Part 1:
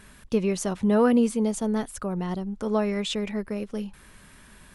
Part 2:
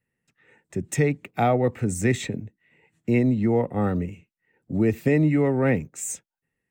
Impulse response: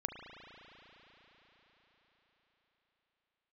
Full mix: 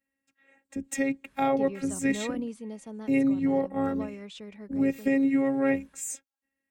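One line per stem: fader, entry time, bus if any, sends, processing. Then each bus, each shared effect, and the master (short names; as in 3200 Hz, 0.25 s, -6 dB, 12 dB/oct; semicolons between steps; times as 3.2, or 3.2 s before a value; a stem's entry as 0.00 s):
-14.5 dB, 1.25 s, no send, high shelf 11000 Hz -9.5 dB
-1.5 dB, 0.00 s, no send, robotiser 273 Hz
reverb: off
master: HPF 47 Hz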